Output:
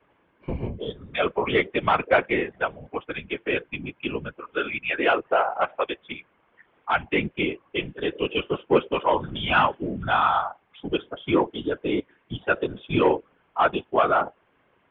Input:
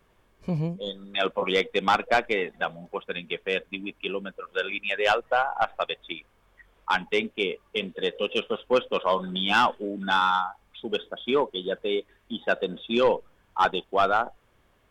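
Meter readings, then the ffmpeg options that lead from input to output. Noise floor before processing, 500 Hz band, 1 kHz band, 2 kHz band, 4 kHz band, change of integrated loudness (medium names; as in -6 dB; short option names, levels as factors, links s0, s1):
-64 dBFS, +1.5 dB, +1.5 dB, +1.5 dB, -3.0 dB, +1.5 dB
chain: -af "highpass=f=180:t=q:w=0.5412,highpass=f=180:t=q:w=1.307,lowpass=f=3100:t=q:w=0.5176,lowpass=f=3100:t=q:w=0.7071,lowpass=f=3100:t=q:w=1.932,afreqshift=-61,afftfilt=real='hypot(re,im)*cos(2*PI*random(0))':imag='hypot(re,im)*sin(2*PI*random(1))':win_size=512:overlap=0.75,volume=2.51"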